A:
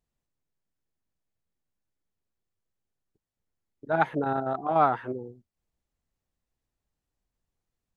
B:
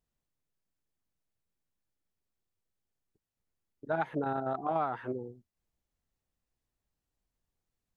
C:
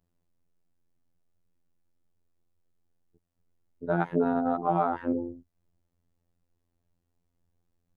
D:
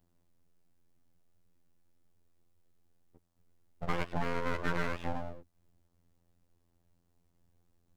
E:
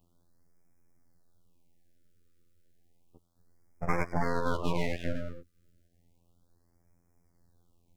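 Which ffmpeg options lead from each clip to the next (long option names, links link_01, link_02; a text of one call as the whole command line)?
ffmpeg -i in.wav -af "acompressor=threshold=-25dB:ratio=10,volume=-2dB" out.wav
ffmpeg -i in.wav -af "tiltshelf=frequency=970:gain=6.5,afftfilt=real='hypot(re,im)*cos(PI*b)':imag='0':win_size=2048:overlap=0.75,volume=8dB" out.wav
ffmpeg -i in.wav -filter_complex "[0:a]acrossover=split=600|1300[link_01][link_02][link_03];[link_01]acompressor=threshold=-40dB:ratio=4[link_04];[link_02]acompressor=threshold=-39dB:ratio=4[link_05];[link_03]acompressor=threshold=-47dB:ratio=4[link_06];[link_04][link_05][link_06]amix=inputs=3:normalize=0,aeval=exprs='abs(val(0))':channel_layout=same,volume=5dB" out.wav
ffmpeg -i in.wav -af "afftfilt=real='re*(1-between(b*sr/1024,810*pow(3600/810,0.5+0.5*sin(2*PI*0.32*pts/sr))/1.41,810*pow(3600/810,0.5+0.5*sin(2*PI*0.32*pts/sr))*1.41))':imag='im*(1-between(b*sr/1024,810*pow(3600/810,0.5+0.5*sin(2*PI*0.32*pts/sr))/1.41,810*pow(3600/810,0.5+0.5*sin(2*PI*0.32*pts/sr))*1.41))':win_size=1024:overlap=0.75,volume=4dB" out.wav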